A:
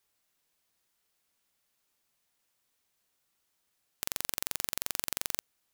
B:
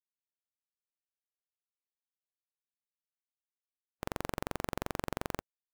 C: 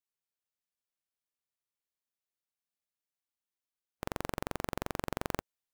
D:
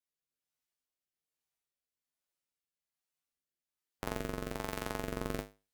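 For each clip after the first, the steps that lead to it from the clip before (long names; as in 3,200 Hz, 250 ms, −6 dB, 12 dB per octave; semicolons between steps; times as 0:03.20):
high-shelf EQ 2,000 Hz −11 dB; every bin expanded away from the loudest bin 2.5 to 1; level +1 dB
speech leveller 0.5 s; level +1 dB
rotating-speaker cabinet horn 1.2 Hz; tuned comb filter 51 Hz, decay 0.28 s, harmonics odd, mix 90%; level +11 dB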